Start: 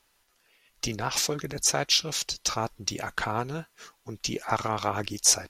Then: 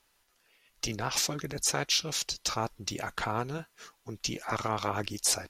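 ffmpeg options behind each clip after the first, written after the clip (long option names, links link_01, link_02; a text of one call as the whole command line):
ffmpeg -i in.wav -af "afftfilt=real='re*lt(hypot(re,im),0.251)':imag='im*lt(hypot(re,im),0.251)':win_size=1024:overlap=0.75,volume=-2dB" out.wav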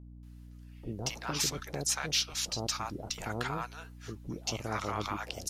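ffmpeg -i in.wav -filter_complex "[0:a]acrossover=split=730[link_01][link_02];[link_02]adelay=230[link_03];[link_01][link_03]amix=inputs=2:normalize=0,aeval=exprs='val(0)+0.00501*(sin(2*PI*60*n/s)+sin(2*PI*2*60*n/s)/2+sin(2*PI*3*60*n/s)/3+sin(2*PI*4*60*n/s)/4+sin(2*PI*5*60*n/s)/5)':channel_layout=same,volume=-2dB" out.wav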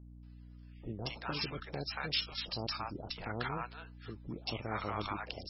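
ffmpeg -i in.wav -af "volume=-2.5dB" -ar 22050 -c:a libmp3lame -b:a 16k out.mp3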